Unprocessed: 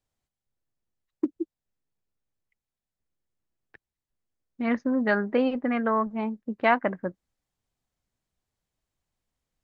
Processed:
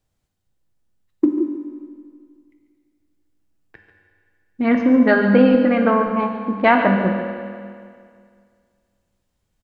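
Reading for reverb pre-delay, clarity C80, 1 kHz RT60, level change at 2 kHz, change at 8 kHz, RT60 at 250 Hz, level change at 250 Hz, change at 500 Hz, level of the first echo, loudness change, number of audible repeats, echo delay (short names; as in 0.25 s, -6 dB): 4 ms, 4.5 dB, 2.1 s, +8.5 dB, n/a, 2.1 s, +11.5 dB, +10.0 dB, -11.5 dB, +9.5 dB, 1, 0.143 s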